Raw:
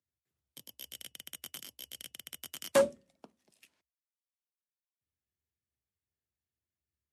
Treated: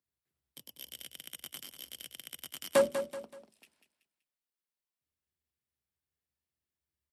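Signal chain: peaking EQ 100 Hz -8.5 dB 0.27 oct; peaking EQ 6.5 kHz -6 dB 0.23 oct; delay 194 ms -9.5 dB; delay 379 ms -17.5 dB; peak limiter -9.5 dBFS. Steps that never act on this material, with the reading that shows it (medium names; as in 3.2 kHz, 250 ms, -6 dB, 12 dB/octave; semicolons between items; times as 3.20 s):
peak limiter -9.5 dBFS: peak at its input -14.0 dBFS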